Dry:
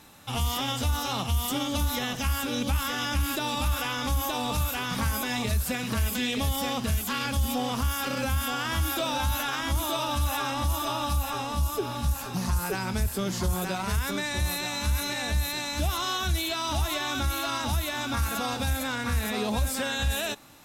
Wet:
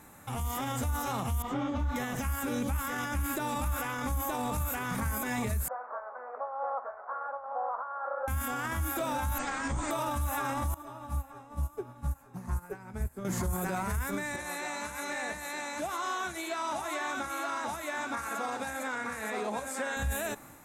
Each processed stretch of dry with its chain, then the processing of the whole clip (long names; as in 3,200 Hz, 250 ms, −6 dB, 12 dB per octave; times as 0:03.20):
0:01.42–0:01.96: high-frequency loss of the air 200 metres + micro pitch shift up and down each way 38 cents
0:05.68–0:08.28: linear delta modulator 64 kbit/s, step −46.5 dBFS + elliptic band-pass filter 560–1,400 Hz, stop band 60 dB + high-frequency loss of the air 380 metres
0:09.38–0:09.91: lower of the sound and its delayed copy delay 3.8 ms + linear-phase brick-wall low-pass 8,900 Hz
0:10.74–0:13.25: high-shelf EQ 2,400 Hz −7 dB + flanger 1.4 Hz, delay 6.5 ms, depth 1.9 ms, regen +75% + expander for the loud parts 2.5 to 1, over −39 dBFS
0:14.36–0:19.97: flanger 1.8 Hz, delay 1.3 ms, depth 7.5 ms, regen −66% + band-pass filter 340–7,700 Hz
whole clip: flat-topped bell 3,900 Hz −12 dB 1.3 octaves; brickwall limiter −27 dBFS; automatic gain control gain up to 3 dB